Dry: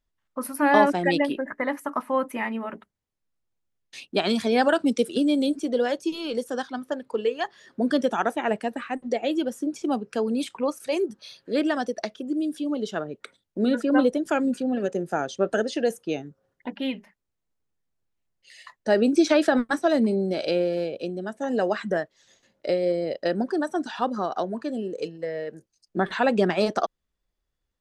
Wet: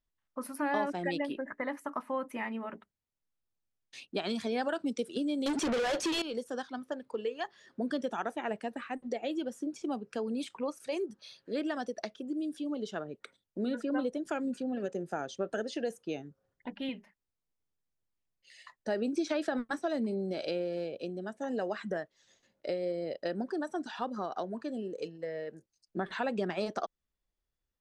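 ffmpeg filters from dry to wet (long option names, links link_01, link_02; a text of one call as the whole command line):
ffmpeg -i in.wav -filter_complex "[0:a]asettb=1/sr,asplit=3[link_01][link_02][link_03];[link_01]atrim=end=5.464[link_04];[link_02]atrim=start=5.46:end=6.22,asetpts=PTS-STARTPTS,afade=type=in:duration=0.004:curve=qsin,afade=type=out:start_time=0.756:duration=0.004:curve=qsin,asplit=2[link_05][link_06];[link_06]highpass=frequency=720:poles=1,volume=37dB,asoftclip=type=tanh:threshold=-13dB[link_07];[link_05][link_07]amix=inputs=2:normalize=0,lowpass=frequency=4000:poles=1,volume=-6dB[link_08];[link_03]atrim=start=6.216[link_09];[link_04][link_08]acrossfade=duration=0.004:curve1=hsin:curve2=qsin[link_10];[link_10][link_09]acrossfade=duration=0.004:curve1=qsin:curve2=hsin,asettb=1/sr,asplit=3[link_11][link_12][link_13];[link_11]atrim=end=16.264[link_14];[link_12]atrim=start=16.26:end=16.89,asetpts=PTS-STARTPTS,afade=type=in:duration=0.004:curve=qsin,afade=type=out:start_time=0.626:duration=0.004:curve=qsin,asubboost=boost=10:cutoff=170[link_15];[link_13]atrim=start=16.886[link_16];[link_14][link_15]acrossfade=duration=0.004:curve1=hsin:curve2=qsin[link_17];[link_17][link_16]acrossfade=duration=0.004:curve1=qsin:curve2=hsin,lowpass=10000,acompressor=threshold=-25dB:ratio=2,volume=-7dB" out.wav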